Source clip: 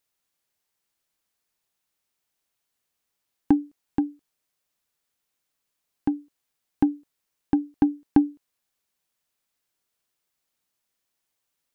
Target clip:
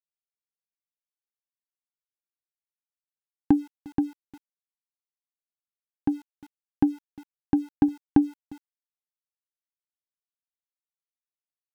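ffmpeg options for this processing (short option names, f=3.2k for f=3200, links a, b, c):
-filter_complex "[0:a]equalizer=f=120:w=1:g=4.5,asplit=2[a][b];[b]adelay=353,lowpass=f=1.6k:p=1,volume=-23.5dB,asplit=2[c][d];[d]adelay=353,lowpass=f=1.6k:p=1,volume=0.16[e];[a][c][e]amix=inputs=3:normalize=0,aeval=exprs='val(0)*gte(abs(val(0)),0.00562)':c=same,volume=-1.5dB"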